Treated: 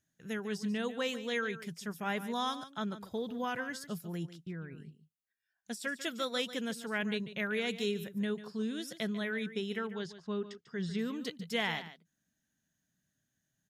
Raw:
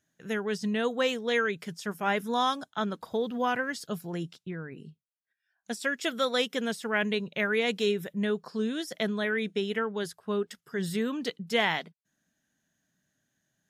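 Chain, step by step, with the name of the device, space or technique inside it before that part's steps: 9.82–10.99 LPF 6000 Hz 24 dB/oct; smiley-face EQ (low shelf 180 Hz +7 dB; bell 610 Hz -3.5 dB 2.5 oct; high shelf 7700 Hz +4.5 dB); echo 0.145 s -13.5 dB; gain -6 dB

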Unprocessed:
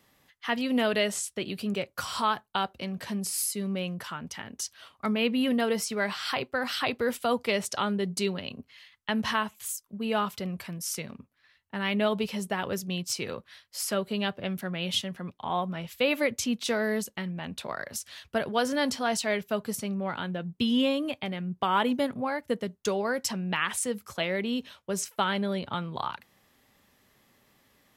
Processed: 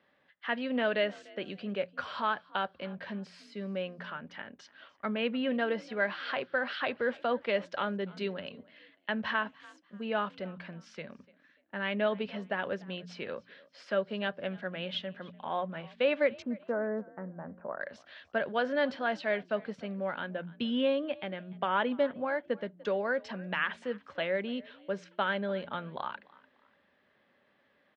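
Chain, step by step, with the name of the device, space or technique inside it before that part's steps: de-hum 59.19 Hz, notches 3; 16.42–17.81 inverse Chebyshev low-pass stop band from 3300 Hz, stop band 50 dB; frequency-shifting delay pedal into a guitar cabinet (frequency-shifting echo 0.294 s, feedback 33%, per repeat +47 Hz, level -23 dB; speaker cabinet 110–3600 Hz, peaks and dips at 120 Hz -9 dB, 570 Hz +8 dB, 1600 Hz +8 dB); gain -6 dB

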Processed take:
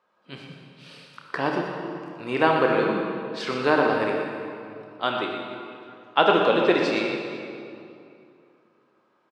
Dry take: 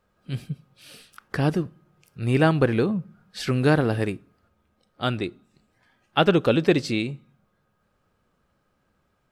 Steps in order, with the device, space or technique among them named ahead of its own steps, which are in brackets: station announcement (BPF 370–4600 Hz; bell 1000 Hz +9.5 dB 0.33 oct; loudspeakers at several distances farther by 10 m -10 dB, 41 m -9 dB; reverb RT60 2.6 s, pre-delay 43 ms, DRR 2 dB)

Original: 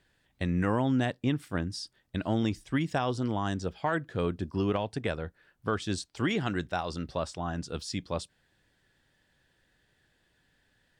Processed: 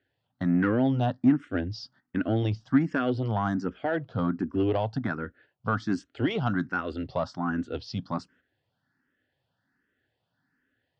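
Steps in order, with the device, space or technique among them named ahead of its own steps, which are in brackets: gate -57 dBFS, range -9 dB; barber-pole phaser into a guitar amplifier (endless phaser +1.3 Hz; soft clip -23 dBFS, distortion -20 dB; speaker cabinet 97–4600 Hz, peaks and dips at 110 Hz +6 dB, 260 Hz +9 dB, 730 Hz +3 dB, 1400 Hz +6 dB, 2400 Hz -5 dB, 3700 Hz -6 dB); gain +4.5 dB

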